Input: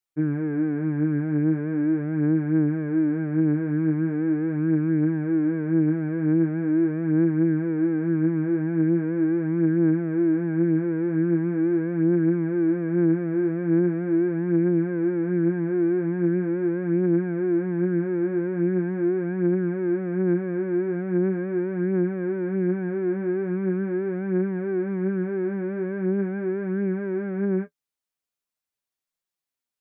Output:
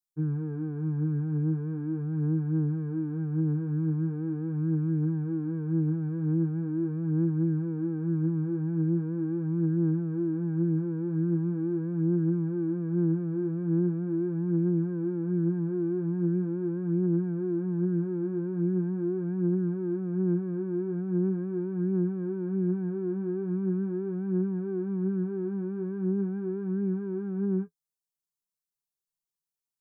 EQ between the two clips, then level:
bass and treble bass +9 dB, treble +6 dB
phaser with its sweep stopped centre 400 Hz, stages 8
−8.0 dB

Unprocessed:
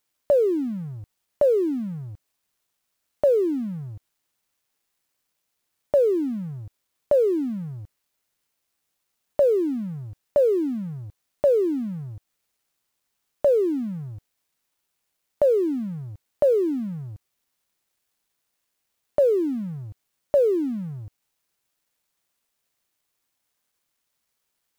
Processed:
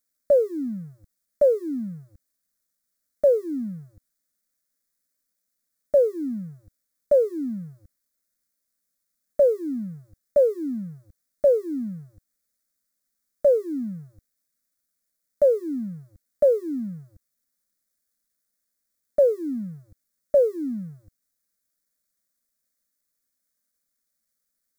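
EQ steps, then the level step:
phaser with its sweep stopped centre 570 Hz, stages 8
dynamic equaliser 620 Hz, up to +7 dB, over −31 dBFS, Q 0.89
parametric band 960 Hz −11 dB 1.4 octaves
0.0 dB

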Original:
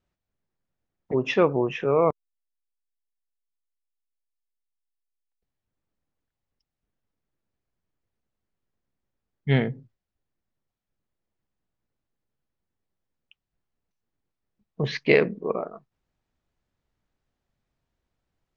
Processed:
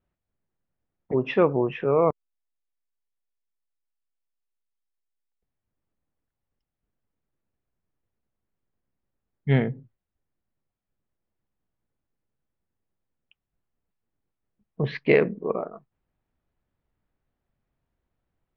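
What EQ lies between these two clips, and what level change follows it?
high-frequency loss of the air 320 metres
+1.0 dB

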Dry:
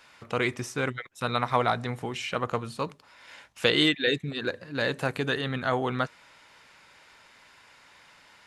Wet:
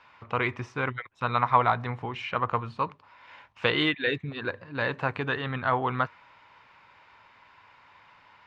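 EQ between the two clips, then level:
graphic EQ with 15 bands 100 Hz +8 dB, 1,000 Hz +10 dB, 2,500 Hz +4 dB
dynamic equaliser 1,600 Hz, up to +3 dB, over −34 dBFS, Q 0.99
high-frequency loss of the air 200 metres
−3.5 dB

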